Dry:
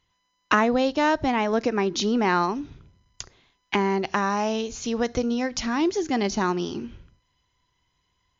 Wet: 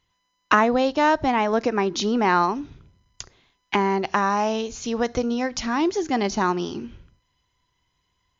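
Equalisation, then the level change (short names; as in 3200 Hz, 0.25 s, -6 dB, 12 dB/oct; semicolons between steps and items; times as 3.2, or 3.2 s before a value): dynamic EQ 950 Hz, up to +4 dB, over -35 dBFS, Q 0.87; 0.0 dB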